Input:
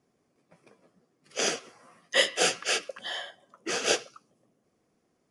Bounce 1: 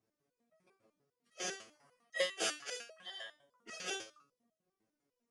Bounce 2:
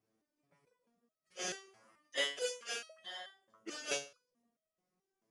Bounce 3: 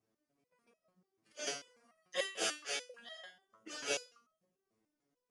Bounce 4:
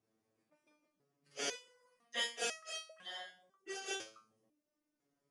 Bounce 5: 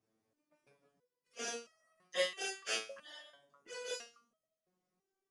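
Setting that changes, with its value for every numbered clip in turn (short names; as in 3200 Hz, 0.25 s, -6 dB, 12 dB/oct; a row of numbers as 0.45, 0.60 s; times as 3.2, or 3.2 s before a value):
stepped resonator, rate: 10, 4.6, 6.8, 2, 3 Hz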